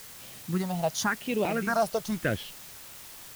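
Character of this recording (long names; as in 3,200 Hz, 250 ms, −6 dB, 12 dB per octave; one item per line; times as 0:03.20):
phaser sweep stages 4, 0.91 Hz, lowest notch 280–1,400 Hz
a quantiser's noise floor 8 bits, dither triangular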